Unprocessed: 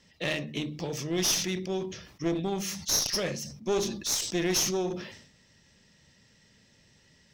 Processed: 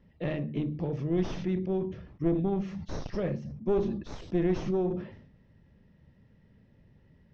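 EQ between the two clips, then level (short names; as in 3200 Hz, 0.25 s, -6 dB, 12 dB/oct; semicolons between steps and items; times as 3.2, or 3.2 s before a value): tape spacing loss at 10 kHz 41 dB; tilt -2 dB/oct; 0.0 dB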